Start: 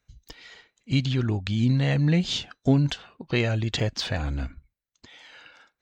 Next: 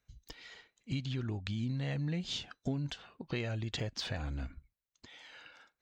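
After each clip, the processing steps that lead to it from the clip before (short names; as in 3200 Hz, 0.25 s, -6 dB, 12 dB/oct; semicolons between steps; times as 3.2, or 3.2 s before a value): compressor 3:1, threshold -30 dBFS, peak gain reduction 11.5 dB; gain -5 dB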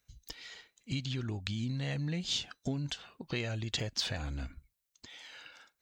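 high shelf 3700 Hz +10 dB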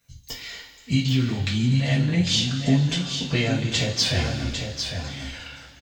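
echo 0.801 s -7 dB; two-slope reverb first 0.28 s, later 2.8 s, from -18 dB, DRR -7.5 dB; gain +3.5 dB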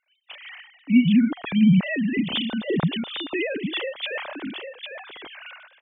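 sine-wave speech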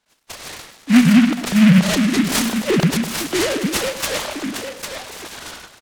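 in parallel at -3.5 dB: overloaded stage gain 18.5 dB; on the sum: feedback echo 0.104 s, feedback 50%, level -12.5 dB; noise-modulated delay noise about 1900 Hz, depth 0.13 ms; gain +2.5 dB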